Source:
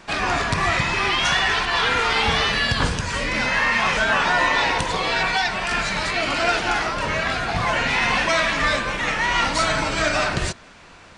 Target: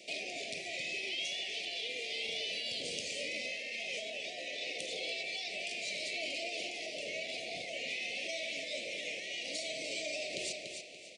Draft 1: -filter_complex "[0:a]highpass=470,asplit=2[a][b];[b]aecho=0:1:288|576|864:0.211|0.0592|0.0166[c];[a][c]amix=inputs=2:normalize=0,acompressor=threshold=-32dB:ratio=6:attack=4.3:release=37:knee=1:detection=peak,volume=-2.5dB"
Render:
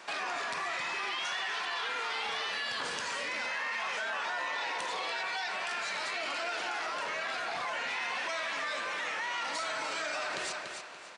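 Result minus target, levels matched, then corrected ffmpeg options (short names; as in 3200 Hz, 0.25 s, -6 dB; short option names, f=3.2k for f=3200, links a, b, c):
1000 Hz band +14.0 dB
-filter_complex "[0:a]highpass=470,asplit=2[a][b];[b]aecho=0:1:288|576|864:0.211|0.0592|0.0166[c];[a][c]amix=inputs=2:normalize=0,acompressor=threshold=-32dB:ratio=6:attack=4.3:release=37:knee=1:detection=peak,asuperstop=centerf=1200:order=12:qfactor=0.8,volume=-2.5dB"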